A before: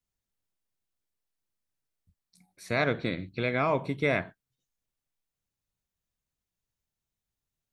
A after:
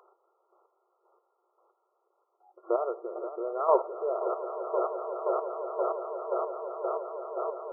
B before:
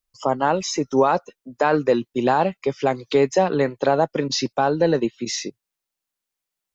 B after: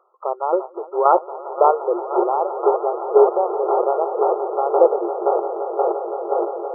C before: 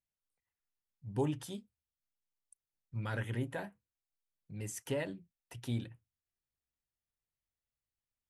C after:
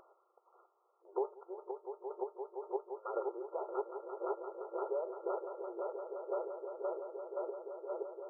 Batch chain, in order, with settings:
echo that builds up and dies away 172 ms, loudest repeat 8, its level −13 dB
in parallel at +2 dB: upward compression, threshold −22 dBFS
on the sum: square-wave tremolo 1.9 Hz, depth 60%, duty 25%
brick-wall band-pass 340–1,400 Hz
level −1.5 dB

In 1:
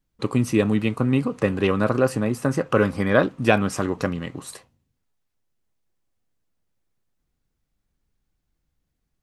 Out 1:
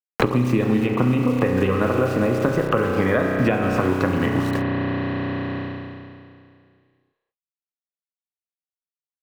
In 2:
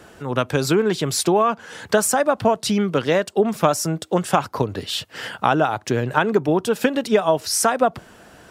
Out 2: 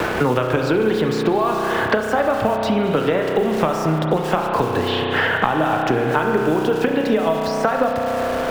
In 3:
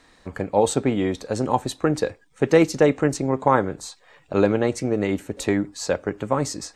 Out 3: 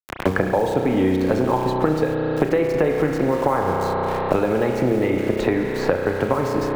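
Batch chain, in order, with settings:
downward compressor 4 to 1, threshold −26 dBFS
parametric band 130 Hz −9 dB 2.4 octaves
pitch vibrato 4.8 Hz 16 cents
low-pass filter 2,800 Hz 12 dB per octave
low-shelf EQ 270 Hz +8 dB
hum removal 197 Hz, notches 39
centre clipping without the shift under −45.5 dBFS
spring reverb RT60 2.3 s, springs 32 ms, chirp 40 ms, DRR 2 dB
multiband upward and downward compressor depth 100%
level +8.5 dB

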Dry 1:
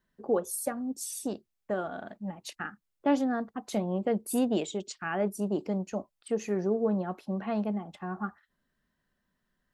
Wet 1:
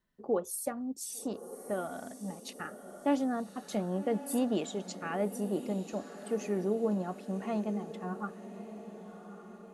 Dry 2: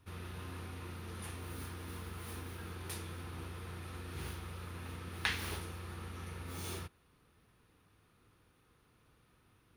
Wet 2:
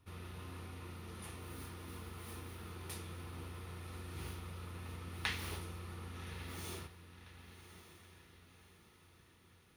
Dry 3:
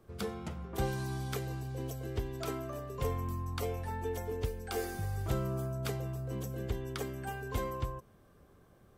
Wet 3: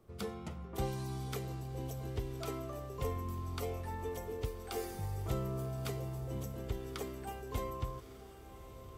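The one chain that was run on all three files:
notch filter 1,600 Hz, Q 11
feedback delay with all-pass diffusion 1,158 ms, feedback 49%, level −12 dB
level −3 dB

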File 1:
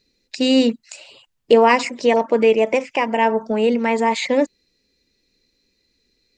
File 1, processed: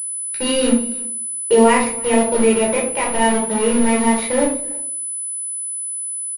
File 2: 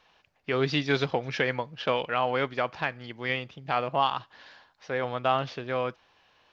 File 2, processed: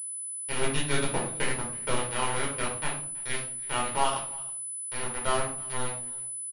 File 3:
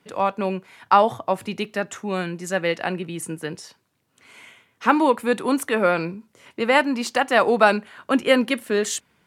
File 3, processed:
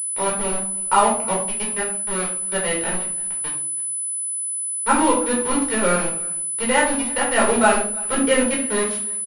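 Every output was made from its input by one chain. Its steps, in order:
centre clipping without the shift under −20.5 dBFS
single-tap delay 327 ms −23 dB
rectangular room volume 550 cubic metres, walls furnished, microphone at 4.6 metres
switching amplifier with a slow clock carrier 10,000 Hz
level −7.5 dB

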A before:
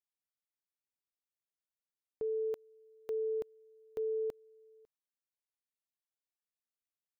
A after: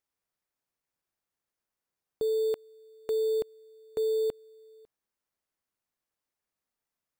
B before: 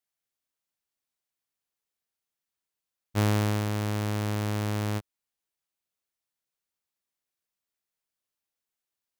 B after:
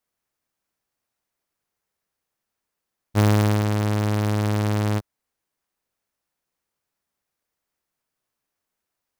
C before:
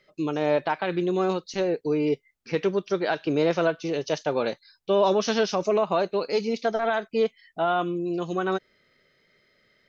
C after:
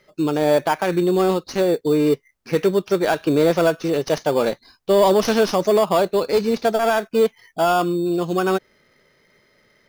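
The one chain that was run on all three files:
stylus tracing distortion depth 0.03 ms
in parallel at −5 dB: decimation without filtering 11×
on the sum: soft clipping −9 dBFS
level +3.5 dB

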